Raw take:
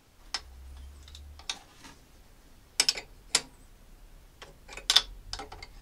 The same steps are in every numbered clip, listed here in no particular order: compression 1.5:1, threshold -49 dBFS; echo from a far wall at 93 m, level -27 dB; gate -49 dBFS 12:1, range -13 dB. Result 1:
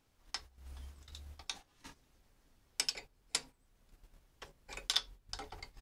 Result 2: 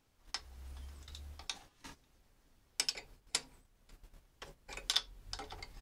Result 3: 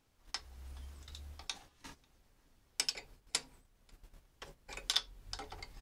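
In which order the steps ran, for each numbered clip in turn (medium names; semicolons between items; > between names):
compression > echo from a far wall > gate; echo from a far wall > gate > compression; gate > compression > echo from a far wall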